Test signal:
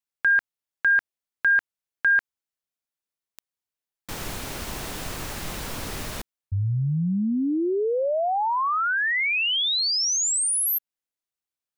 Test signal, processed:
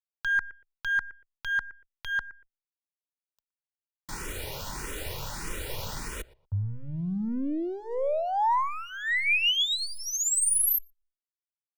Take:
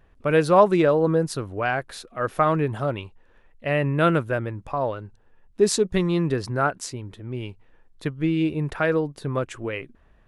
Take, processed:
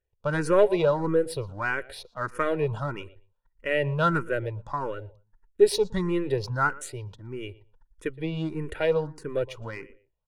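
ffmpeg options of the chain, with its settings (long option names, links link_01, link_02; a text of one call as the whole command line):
ffmpeg -i in.wav -filter_complex "[0:a]aeval=exprs='if(lt(val(0),0),0.708*val(0),val(0))':channel_layout=same,agate=range=-23dB:threshold=-52dB:ratio=16:release=21:detection=peak,aecho=1:1:2.1:0.45,asplit=2[link_01][link_02];[link_02]adelay=118,lowpass=frequency=1900:poles=1,volume=-19.5dB,asplit=2[link_03][link_04];[link_04]adelay=118,lowpass=frequency=1900:poles=1,volume=0.23[link_05];[link_03][link_05]amix=inputs=2:normalize=0[link_06];[link_01][link_06]amix=inputs=2:normalize=0,asplit=2[link_07][link_08];[link_08]afreqshift=1.6[link_09];[link_07][link_09]amix=inputs=2:normalize=1" out.wav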